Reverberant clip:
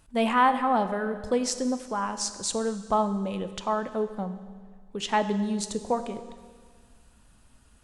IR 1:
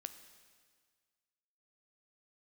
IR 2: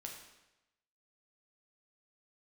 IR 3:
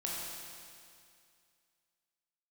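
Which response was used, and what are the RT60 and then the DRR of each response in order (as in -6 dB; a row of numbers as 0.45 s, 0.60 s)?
1; 1.7 s, 0.95 s, 2.3 s; 9.5 dB, 0.5 dB, -5.0 dB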